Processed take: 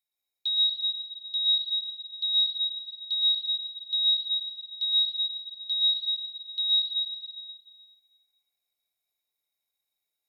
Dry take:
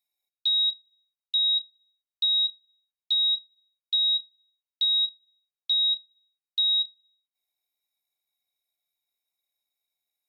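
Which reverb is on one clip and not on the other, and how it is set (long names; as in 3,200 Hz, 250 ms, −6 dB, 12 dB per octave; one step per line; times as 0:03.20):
dense smooth reverb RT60 1.8 s, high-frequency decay 0.95×, pre-delay 100 ms, DRR −3.5 dB
level −4.5 dB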